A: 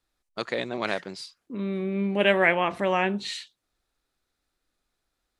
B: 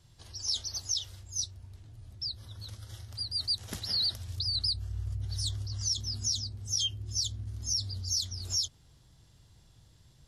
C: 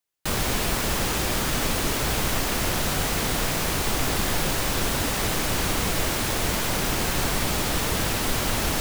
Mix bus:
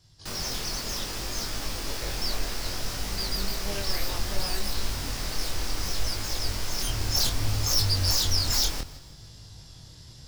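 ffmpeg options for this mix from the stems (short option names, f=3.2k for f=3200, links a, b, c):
-filter_complex "[0:a]acompressor=threshold=-22dB:ratio=6,adelay=1500,volume=-10dB[a];[1:a]aeval=exprs='0.133*sin(PI/2*6.31*val(0)/0.133)':c=same,volume=-5dB,afade=t=in:st=6.76:d=0.26:silence=0.266073[b];[2:a]asubboost=boost=5.5:cutoff=55,volume=-8dB,asplit=2[c][d];[d]volume=-15.5dB,aecho=0:1:162|324|486|648|810|972:1|0.42|0.176|0.0741|0.0311|0.0131[e];[a][b][c][e]amix=inputs=4:normalize=0,flanger=delay=18.5:depth=7.2:speed=0.64,equalizer=f=5.1k:w=2.5:g=9.5"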